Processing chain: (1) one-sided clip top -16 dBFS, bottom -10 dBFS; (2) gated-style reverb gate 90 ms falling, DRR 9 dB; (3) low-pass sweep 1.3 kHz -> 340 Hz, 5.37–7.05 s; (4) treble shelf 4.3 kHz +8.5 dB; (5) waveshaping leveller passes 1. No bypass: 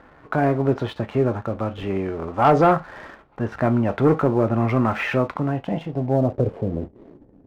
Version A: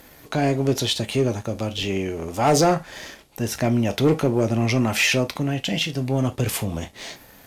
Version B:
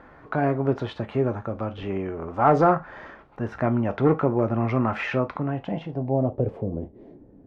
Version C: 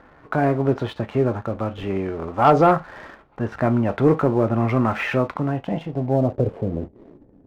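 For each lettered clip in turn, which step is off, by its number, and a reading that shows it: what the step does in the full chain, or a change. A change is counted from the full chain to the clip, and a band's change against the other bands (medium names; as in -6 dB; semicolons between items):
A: 3, 4 kHz band +16.0 dB; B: 5, crest factor change +3.0 dB; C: 1, distortion -21 dB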